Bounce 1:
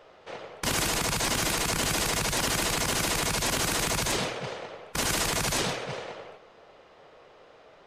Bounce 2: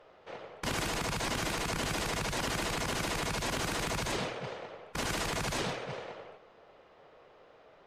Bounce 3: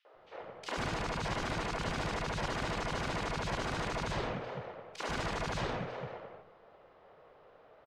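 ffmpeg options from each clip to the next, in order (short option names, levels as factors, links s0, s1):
-af "aemphasis=mode=reproduction:type=cd,volume=0.596"
-filter_complex "[0:a]adynamicsmooth=sensitivity=1.5:basefreq=4100,acrossover=split=300|2600[s0][s1][s2];[s1]adelay=50[s3];[s0]adelay=140[s4];[s4][s3][s2]amix=inputs=3:normalize=0"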